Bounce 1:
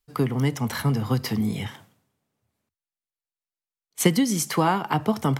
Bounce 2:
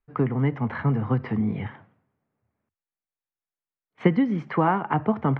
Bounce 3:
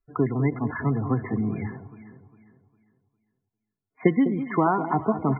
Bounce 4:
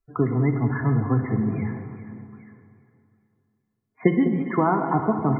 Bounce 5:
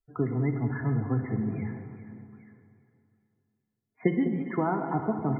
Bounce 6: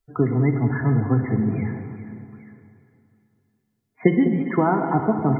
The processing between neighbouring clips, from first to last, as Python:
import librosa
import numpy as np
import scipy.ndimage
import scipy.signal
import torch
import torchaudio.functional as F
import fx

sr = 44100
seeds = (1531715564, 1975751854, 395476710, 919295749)

y1 = scipy.signal.sosfilt(scipy.signal.butter(4, 2100.0, 'lowpass', fs=sr, output='sos'), x)
y2 = y1 + 0.35 * np.pad(y1, (int(2.9 * sr / 1000.0), 0))[:len(y1)]
y2 = fx.spec_topn(y2, sr, count=32)
y2 = fx.echo_alternate(y2, sr, ms=202, hz=840.0, feedback_pct=57, wet_db=-10.0)
y3 = fx.spec_box(y2, sr, start_s=2.32, length_s=0.29, low_hz=1000.0, high_hz=2300.0, gain_db=10)
y3 = fx.peak_eq(y3, sr, hz=140.0, db=3.0, octaves=1.3)
y3 = fx.rev_plate(y3, sr, seeds[0], rt60_s=2.5, hf_ratio=0.65, predelay_ms=0, drr_db=6.0)
y4 = fx.peak_eq(y3, sr, hz=1100.0, db=-8.5, octaves=0.24)
y4 = y4 * 10.0 ** (-6.0 / 20.0)
y5 = fx.echo_feedback(y4, sr, ms=256, feedback_pct=58, wet_db=-22.0)
y5 = y5 * 10.0 ** (8.0 / 20.0)